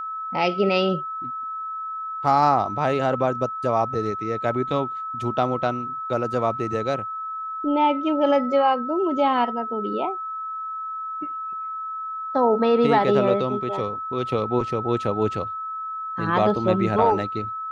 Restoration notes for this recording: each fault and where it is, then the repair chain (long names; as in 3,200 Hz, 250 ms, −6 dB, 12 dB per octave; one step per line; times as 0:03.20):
whistle 1,300 Hz −28 dBFS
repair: notch filter 1,300 Hz, Q 30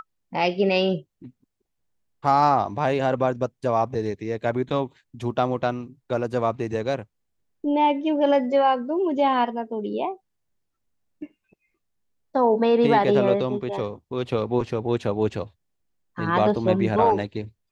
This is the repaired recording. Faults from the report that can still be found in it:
none of them is left